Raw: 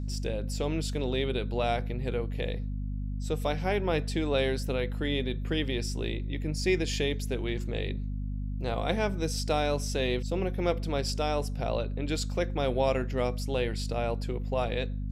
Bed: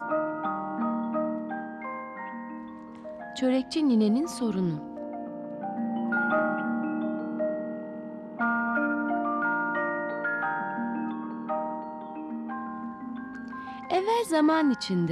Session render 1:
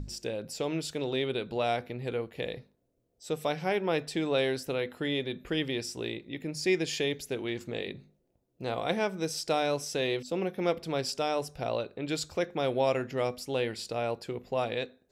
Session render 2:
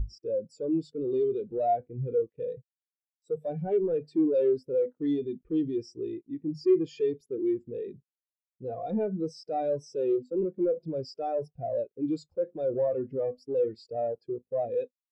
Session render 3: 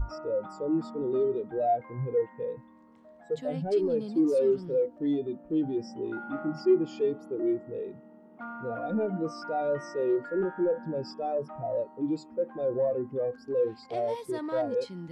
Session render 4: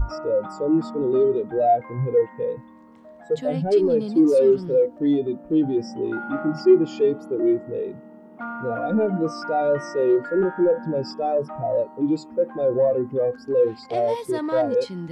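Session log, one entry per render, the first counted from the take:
notches 50/100/150/200/250 Hz
sample leveller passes 5; spectral expander 2.5:1
add bed -14 dB
gain +8 dB

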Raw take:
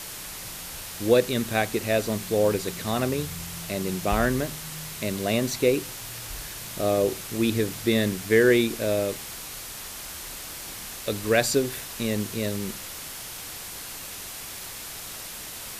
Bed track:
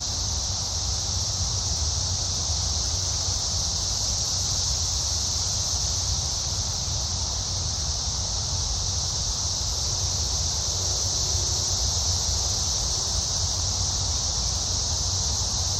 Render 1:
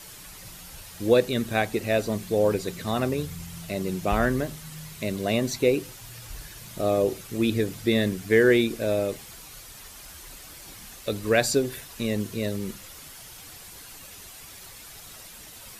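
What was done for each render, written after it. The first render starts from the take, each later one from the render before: denoiser 9 dB, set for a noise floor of -38 dBFS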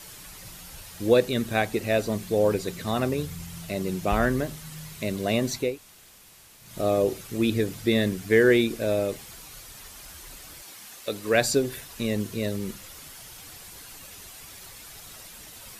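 5.67–6.67 room tone, crossfade 0.24 s; 10.61–11.33 HPF 600 Hz -> 250 Hz 6 dB/oct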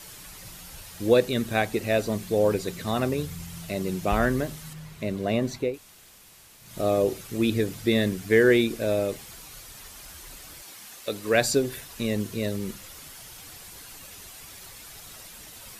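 4.73–5.74 high shelf 3200 Hz -10.5 dB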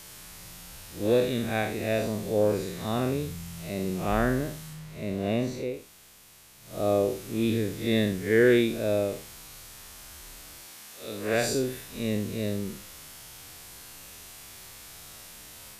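time blur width 0.128 s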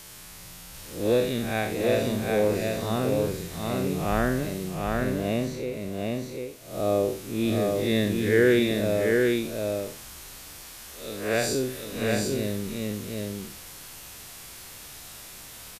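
spectral swells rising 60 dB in 0.42 s; on a send: echo 0.747 s -3 dB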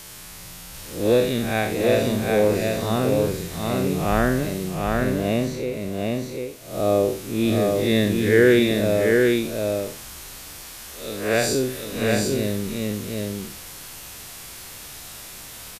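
gain +4.5 dB

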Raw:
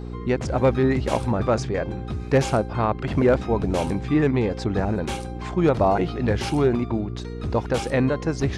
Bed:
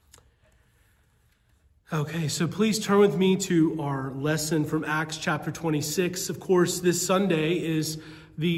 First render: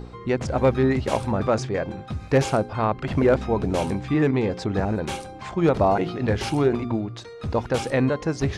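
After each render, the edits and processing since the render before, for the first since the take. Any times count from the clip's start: de-hum 60 Hz, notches 7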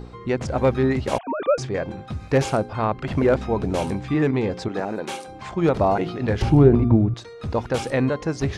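1.18–1.58 sine-wave speech; 4.68–5.28 HPF 260 Hz; 6.42–7.14 tilt -4 dB/oct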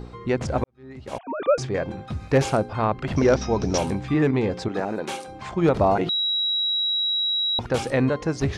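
0.64–1.48 fade in quadratic; 3.16–3.78 synth low-pass 5700 Hz, resonance Q 12; 6.09–7.59 bleep 3870 Hz -20.5 dBFS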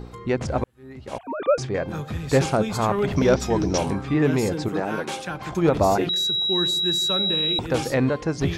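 add bed -5.5 dB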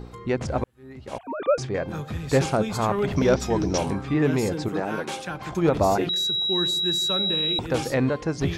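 gain -1.5 dB

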